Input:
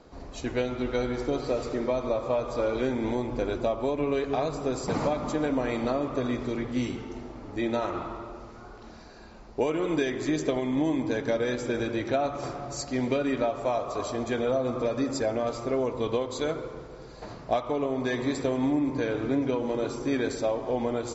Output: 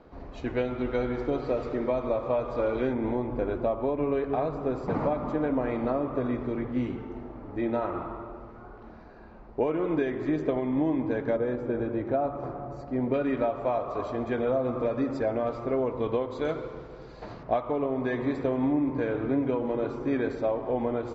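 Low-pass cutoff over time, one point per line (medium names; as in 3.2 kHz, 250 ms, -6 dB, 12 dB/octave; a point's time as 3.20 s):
2.5 kHz
from 2.93 s 1.7 kHz
from 11.36 s 1.1 kHz
from 13.14 s 2.1 kHz
from 16.45 s 3.8 kHz
from 17.43 s 2 kHz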